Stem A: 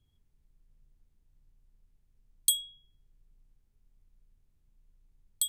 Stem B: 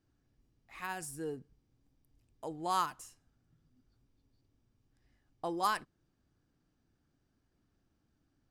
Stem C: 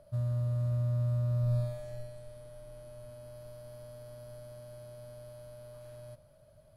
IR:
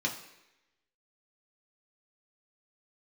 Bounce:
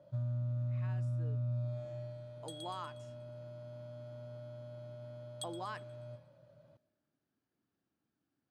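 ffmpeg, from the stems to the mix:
-filter_complex "[0:a]volume=0.562,asplit=3[s0][s1][s2];[s1]volume=0.0841[s3];[s2]volume=0.168[s4];[1:a]alimiter=level_in=1.33:limit=0.0631:level=0:latency=1,volume=0.75,volume=0.473,asplit=2[s5][s6];[2:a]volume=0.668,asplit=3[s7][s8][s9];[s8]volume=0.708[s10];[s9]volume=0.112[s11];[s6]apad=whole_len=241952[s12];[s0][s12]sidechaincompress=threshold=0.002:ratio=8:attack=34:release=390[s13];[3:a]atrim=start_sample=2205[s14];[s3][s10]amix=inputs=2:normalize=0[s15];[s15][s14]afir=irnorm=-1:irlink=0[s16];[s4][s11]amix=inputs=2:normalize=0,aecho=0:1:120|240|360|480|600|720|840:1|0.51|0.26|0.133|0.0677|0.0345|0.0176[s17];[s13][s5][s7][s16][s17]amix=inputs=5:normalize=0,highpass=160,lowpass=4400,acompressor=threshold=0.02:ratio=6"

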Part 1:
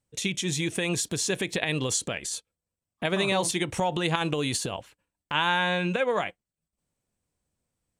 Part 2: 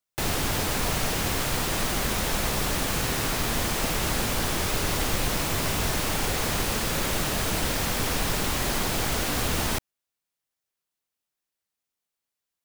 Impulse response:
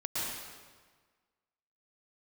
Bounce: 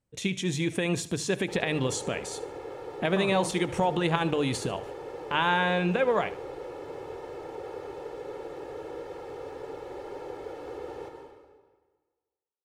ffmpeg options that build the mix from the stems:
-filter_complex "[0:a]highshelf=f=2900:g=-10,bandreject=f=50:t=h:w=6,bandreject=f=100:t=h:w=6,bandreject=f=150:t=h:w=6,volume=1.19,asplit=2[s0][s1];[s1]volume=0.133[s2];[1:a]bandpass=f=490:t=q:w=2.2:csg=0,aecho=1:1:2.3:0.98,adelay=1300,volume=0.316,asplit=2[s3][s4];[s4]volume=0.531[s5];[2:a]atrim=start_sample=2205[s6];[s5][s6]afir=irnorm=-1:irlink=0[s7];[s2]aecho=0:1:74|148|222|296|370:1|0.37|0.137|0.0507|0.0187[s8];[s0][s3][s7][s8]amix=inputs=4:normalize=0"

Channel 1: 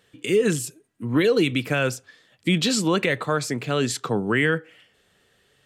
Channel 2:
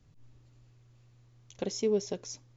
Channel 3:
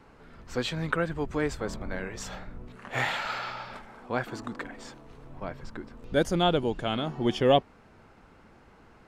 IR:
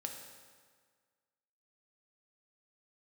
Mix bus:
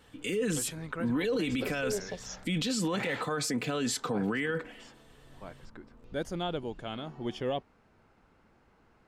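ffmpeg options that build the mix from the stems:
-filter_complex "[0:a]alimiter=limit=0.178:level=0:latency=1,aecho=1:1:4:0.51,volume=0.891[s0];[1:a]asplit=2[s1][s2];[s2]afreqshift=0.63[s3];[s1][s3]amix=inputs=2:normalize=1,volume=0.944[s4];[2:a]volume=0.355,asplit=3[s5][s6][s7];[s5]atrim=end=3.23,asetpts=PTS-STARTPTS,afade=t=out:st=3.226:d=0.004:c=hsin[s8];[s6]atrim=start=3.23:end=3.73,asetpts=PTS-STARTPTS,volume=0[s9];[s7]atrim=start=3.73,asetpts=PTS-STARTPTS,afade=t=in:d=0.004:c=hsin[s10];[s8][s9][s10]concat=n=3:v=0:a=1[s11];[s0][s4][s11]amix=inputs=3:normalize=0,alimiter=limit=0.0708:level=0:latency=1:release=24"

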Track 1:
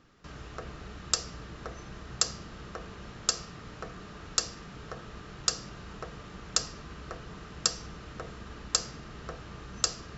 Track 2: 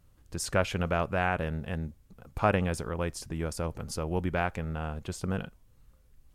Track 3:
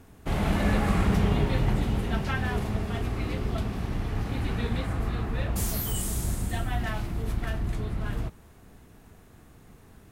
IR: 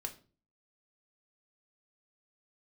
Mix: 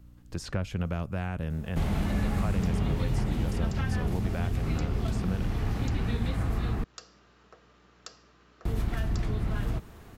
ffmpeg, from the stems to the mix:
-filter_complex "[0:a]highpass=240,aeval=exprs='val(0)+0.00282*(sin(2*PI*60*n/s)+sin(2*PI*2*60*n/s)/2+sin(2*PI*3*60*n/s)/3+sin(2*PI*4*60*n/s)/4+sin(2*PI*5*60*n/s)/5)':c=same,adelay=1500,volume=0.224[s0];[1:a]aeval=exprs='val(0)+0.002*(sin(2*PI*60*n/s)+sin(2*PI*2*60*n/s)/2+sin(2*PI*3*60*n/s)/3+sin(2*PI*4*60*n/s)/4+sin(2*PI*5*60*n/s)/5)':c=same,volume=1.33[s1];[2:a]acontrast=72,adelay=1500,volume=0.708,asplit=3[s2][s3][s4];[s2]atrim=end=6.84,asetpts=PTS-STARTPTS,afade=t=out:st=6.836:d=0.004:c=hsin[s5];[s3]atrim=start=6.84:end=8.65,asetpts=PTS-STARTPTS,volume=0[s6];[s4]atrim=start=8.65,asetpts=PTS-STARTPTS,afade=t=in:d=0.004:c=hsin[s7];[s5][s6][s7]concat=n=3:v=0:a=1[s8];[s0][s1][s8]amix=inputs=3:normalize=0,equalizer=f=10000:t=o:w=0.88:g=-5,acrossover=split=250|4700[s9][s10][s11];[s9]acompressor=threshold=0.0562:ratio=4[s12];[s10]acompressor=threshold=0.0126:ratio=4[s13];[s11]acompressor=threshold=0.00282:ratio=4[s14];[s12][s13][s14]amix=inputs=3:normalize=0"

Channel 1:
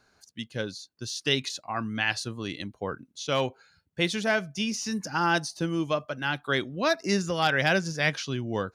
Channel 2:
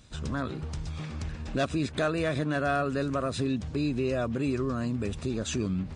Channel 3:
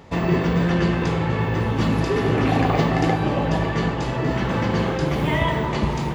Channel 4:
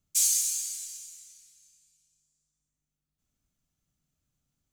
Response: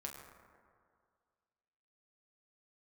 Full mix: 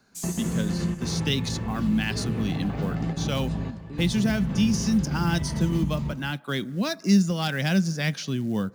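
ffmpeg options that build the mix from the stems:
-filter_complex "[0:a]highshelf=f=7700:g=5,acrusher=bits=6:mode=log:mix=0:aa=0.000001,volume=0.891,asplit=3[s0][s1][s2];[s1]volume=0.119[s3];[1:a]adelay=150,volume=0.168[s4];[2:a]asubboost=boost=4.5:cutoff=120,acompressor=threshold=0.126:ratio=6,volume=0.282,asplit=2[s5][s6];[s6]volume=0.266[s7];[3:a]volume=0.211[s8];[s2]apad=whole_len=271207[s9];[s5][s9]sidechaingate=range=0.0224:threshold=0.002:ratio=16:detection=peak[s10];[4:a]atrim=start_sample=2205[s11];[s3][s11]afir=irnorm=-1:irlink=0[s12];[s7]aecho=0:1:178:1[s13];[s0][s4][s10][s8][s12][s13]amix=inputs=6:normalize=0,equalizer=f=200:t=o:w=0.86:g=12.5,acrossover=split=230|3000[s14][s15][s16];[s15]acompressor=threshold=0.0224:ratio=2[s17];[s14][s17][s16]amix=inputs=3:normalize=0"

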